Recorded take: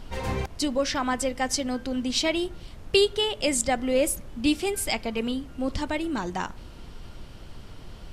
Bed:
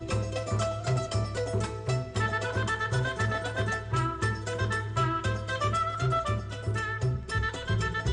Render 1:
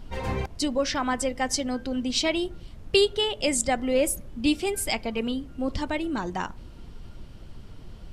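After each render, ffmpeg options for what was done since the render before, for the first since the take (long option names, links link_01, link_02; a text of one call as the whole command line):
ffmpeg -i in.wav -af "afftdn=noise_reduction=6:noise_floor=-44" out.wav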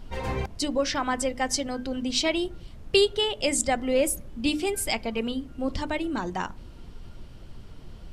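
ffmpeg -i in.wav -af "bandreject=frequency=50:width_type=h:width=6,bandreject=frequency=100:width_type=h:width=6,bandreject=frequency=150:width_type=h:width=6,bandreject=frequency=200:width_type=h:width=6,bandreject=frequency=250:width_type=h:width=6,bandreject=frequency=300:width_type=h:width=6" out.wav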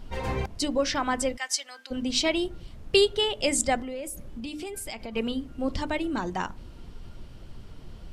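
ffmpeg -i in.wav -filter_complex "[0:a]asplit=3[link_01][link_02][link_03];[link_01]afade=type=out:start_time=1.36:duration=0.02[link_04];[link_02]highpass=1500,afade=type=in:start_time=1.36:duration=0.02,afade=type=out:start_time=1.9:duration=0.02[link_05];[link_03]afade=type=in:start_time=1.9:duration=0.02[link_06];[link_04][link_05][link_06]amix=inputs=3:normalize=0,asettb=1/sr,asplit=3[link_07][link_08][link_09];[link_07]atrim=end=3.824[link_10];[link_08]atrim=start=3.82:end=5.16,asetpts=PTS-STARTPTS,afade=type=in:duration=0.004:curve=qsin,afade=type=out:start_time=1.336:duration=0.004:curve=qsin,acompressor=threshold=-33dB:ratio=5:attack=3.2:release=140:knee=1:detection=peak[link_11];[link_09]atrim=start=5.156[link_12];[link_10][link_11]acrossfade=duration=0.004:curve1=hsin:curve2=qsin[link_13];[link_13][link_12]acrossfade=duration=0.004:curve1=qsin:curve2=hsin" out.wav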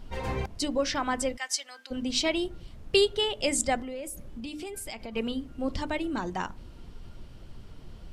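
ffmpeg -i in.wav -af "volume=-2dB" out.wav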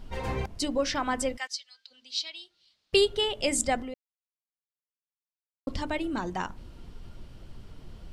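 ffmpeg -i in.wav -filter_complex "[0:a]asettb=1/sr,asplit=3[link_01][link_02][link_03];[link_01]atrim=end=1.474[link_04];[link_02]atrim=start=1.47:end=2.93,asetpts=PTS-STARTPTS,afade=type=in:duration=0.004:curve=qsin,afade=type=out:start_time=1.456:duration=0.004:curve=qsin,bandpass=frequency=4300:width_type=q:width=3.1[link_05];[link_03]atrim=start=2.926[link_06];[link_04][link_05]acrossfade=duration=0.004:curve1=hsin:curve2=qsin[link_07];[link_07][link_06]acrossfade=duration=0.004:curve1=qsin:curve2=hsin,asplit=3[link_08][link_09][link_10];[link_08]atrim=end=3.94,asetpts=PTS-STARTPTS,afade=type=out:start_time=3.936:duration=0.004:curve=hsin[link_11];[link_09]atrim=start=3.94:end=5.67,asetpts=PTS-STARTPTS,volume=0[link_12];[link_10]atrim=start=5.67,asetpts=PTS-STARTPTS,afade=type=in:duration=0.004:curve=hsin[link_13];[link_11][link_12][link_13]concat=n=3:v=0:a=1" out.wav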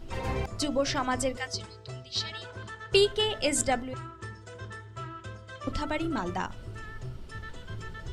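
ffmpeg -i in.wav -i bed.wav -filter_complex "[1:a]volume=-12.5dB[link_01];[0:a][link_01]amix=inputs=2:normalize=0" out.wav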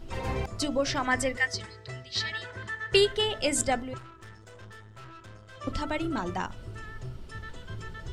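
ffmpeg -i in.wav -filter_complex "[0:a]asettb=1/sr,asplit=3[link_01][link_02][link_03];[link_01]atrim=end=1.054[link_04];[link_02]atrim=start=1.05:end=3.17,asetpts=PTS-STARTPTS,afade=type=in:duration=0.004:curve=qsin,afade=type=out:start_time=2.116:duration=0.004:curve=qsin,equalizer=frequency=1900:width=4:gain=13.5[link_05];[link_03]atrim=start=3.166[link_06];[link_04][link_05]acrossfade=duration=0.004:curve1=hsin:curve2=qsin[link_07];[link_07][link_06]acrossfade=duration=0.004:curve1=qsin:curve2=hsin,asettb=1/sr,asplit=3[link_08][link_09][link_10];[link_08]atrim=end=3.984[link_11];[link_09]atrim=start=3.98:end=5.57,asetpts=PTS-STARTPTS,afade=type=in:duration=0.004:curve=qsin,afade=type=out:start_time=1.586:duration=0.004:curve=qsin,aeval=exprs='(tanh(158*val(0)+0.65)-tanh(0.65))/158':channel_layout=same[link_12];[link_10]atrim=start=5.566[link_13];[link_11][link_12]acrossfade=duration=0.004:curve1=hsin:curve2=qsin[link_14];[link_14][link_13]acrossfade=duration=0.004:curve1=qsin:curve2=hsin" out.wav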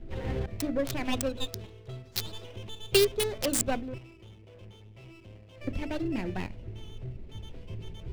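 ffmpeg -i in.wav -filter_complex "[0:a]acrossover=split=330|720|2100[link_01][link_02][link_03][link_04];[link_03]aeval=exprs='abs(val(0))':channel_layout=same[link_05];[link_04]acrusher=bits=3:mix=0:aa=0.000001[link_06];[link_01][link_02][link_05][link_06]amix=inputs=4:normalize=0" out.wav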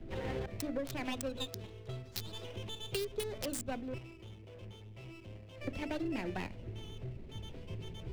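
ffmpeg -i in.wav -filter_complex "[0:a]alimiter=limit=-20dB:level=0:latency=1:release=237,acrossover=split=83|350[link_01][link_02][link_03];[link_01]acompressor=threshold=-48dB:ratio=4[link_04];[link_02]acompressor=threshold=-42dB:ratio=4[link_05];[link_03]acompressor=threshold=-37dB:ratio=4[link_06];[link_04][link_05][link_06]amix=inputs=3:normalize=0" out.wav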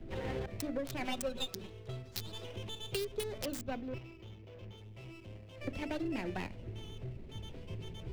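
ffmpeg -i in.wav -filter_complex "[0:a]asettb=1/sr,asplit=3[link_01][link_02][link_03];[link_01]atrim=end=1.004[link_04];[link_02]atrim=start=1:end=1.69,asetpts=PTS-STARTPTS,afade=type=in:duration=0.004:curve=qsin,afade=type=out:start_time=0.686:duration=0.004:curve=qsin,aecho=1:1:5.3:0.73,atrim=end_sample=30429[link_05];[link_03]atrim=start=1.686[link_06];[link_04][link_05]acrossfade=duration=0.004:curve1=hsin:curve2=qsin[link_07];[link_07][link_06]acrossfade=duration=0.004:curve1=qsin:curve2=hsin,asettb=1/sr,asplit=3[link_08][link_09][link_10];[link_08]atrim=end=3.464[link_11];[link_09]atrim=start=3.46:end=4.78,asetpts=PTS-STARTPTS,afade=type=in:duration=0.004:curve=qsin,afade=type=out:start_time=1.316:duration=0.004:curve=qsin,equalizer=frequency=9100:width_type=o:width=0.59:gain=-11[link_12];[link_10]atrim=start=4.776[link_13];[link_11][link_12]acrossfade=duration=0.004:curve1=hsin:curve2=qsin[link_14];[link_14][link_13]acrossfade=duration=0.004:curve1=qsin:curve2=hsin" out.wav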